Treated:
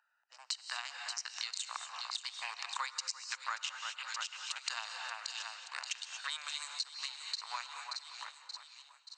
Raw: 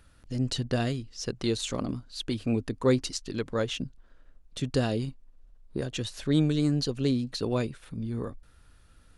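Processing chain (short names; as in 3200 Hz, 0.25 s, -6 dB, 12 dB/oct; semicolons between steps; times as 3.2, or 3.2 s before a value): Wiener smoothing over 41 samples; Doppler pass-by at 3.88, 7 m/s, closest 3.3 m; steep high-pass 890 Hz 48 dB/oct; notch 3400 Hz, Q 6.8; in parallel at +2 dB: vocal rider within 4 dB; on the sum: brick-wall FIR low-pass 8600 Hz; high shelf 4600 Hz +6.5 dB; on a send: split-band echo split 2500 Hz, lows 0.34 s, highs 0.578 s, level -13 dB; on the sum: non-linear reverb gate 0.26 s rising, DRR 10.5 dB; compressor 8:1, threshold -52 dBFS, peak gain reduction 22.5 dB; mismatched tape noise reduction decoder only; gain +16 dB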